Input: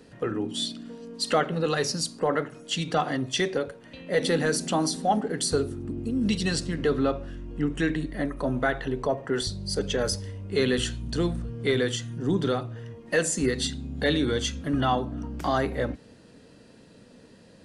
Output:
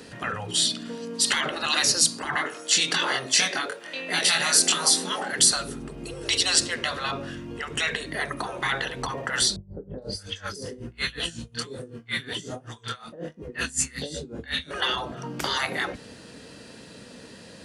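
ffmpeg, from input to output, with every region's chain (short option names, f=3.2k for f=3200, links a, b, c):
-filter_complex "[0:a]asettb=1/sr,asplit=3[a][b][c];[a]atrim=end=2.354[d];[b]atrim=start=2.35:end=5.31,asetpts=PTS-STARTPTS,afade=t=in:d=0.004:c=qsin,afade=t=out:st=2.956:d=0.004:c=qsin,highpass=380,asplit=2[e][f];[f]adelay=23,volume=-3dB[g];[e][g]amix=inputs=2:normalize=0,atrim=end_sample=130536[h];[c]atrim=start=5.306[i];[d][h]acrossfade=d=0.004:c1=hsin:c2=qsin[j];[j][i]acrossfade=d=0.004:c1=qsin:c2=hsin,asettb=1/sr,asplit=3[k][l][m];[k]atrim=end=9.564[n];[l]atrim=start=9.56:end=14.71,asetpts=PTS-STARTPTS,afade=t=in:d=0.004:c=qsin,afade=t=out:st=5.146:d=0.004:c=qsin,acrossover=split=800|3800[o][p][q];[p]adelay=420[r];[q]adelay=460[s];[o][r][s]amix=inputs=3:normalize=0,atrim=end_sample=227115,flanger=delay=19.5:depth=7.9:speed=1.3,aeval=exprs='val(0)*pow(10,-23*(0.5-0.5*cos(2*PI*5.4*n/s))/20)':c=same[t];[m]atrim=start=14.706[u];[n][t]acrossfade=d=0.004:c1=hsin:c2=qsin[v];[v][u]acrossfade=d=0.004:c1=qsin:c2=hsin,afftfilt=real='re*lt(hypot(re,im),0.112)':imag='im*lt(hypot(re,im),0.112)':win_size=1024:overlap=0.75,highpass=42,tiltshelf=f=920:g=-4,volume=9dB"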